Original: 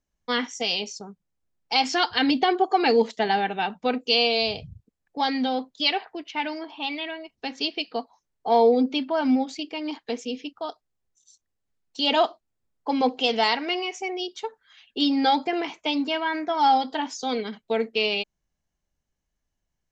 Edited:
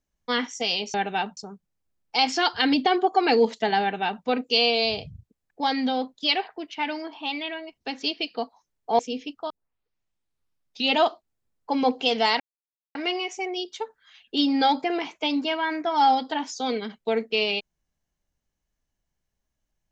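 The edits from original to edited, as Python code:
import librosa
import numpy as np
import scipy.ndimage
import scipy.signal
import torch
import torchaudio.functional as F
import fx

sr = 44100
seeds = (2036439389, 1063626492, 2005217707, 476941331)

y = fx.edit(x, sr, fx.duplicate(start_s=3.38, length_s=0.43, to_s=0.94),
    fx.cut(start_s=8.56, length_s=1.61),
    fx.tape_start(start_s=10.68, length_s=1.47),
    fx.insert_silence(at_s=13.58, length_s=0.55), tone=tone)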